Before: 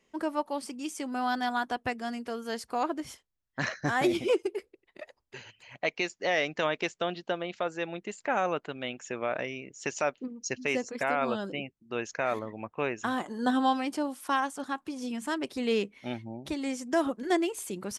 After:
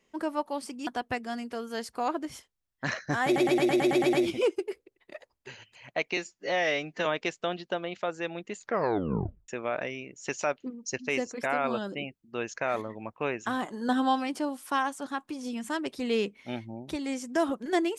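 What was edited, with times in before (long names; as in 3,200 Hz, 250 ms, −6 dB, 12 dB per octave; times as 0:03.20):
0:00.87–0:01.62: remove
0:04.00: stutter 0.11 s, 9 plays
0:06.04–0:06.63: time-stretch 1.5×
0:08.14: tape stop 0.92 s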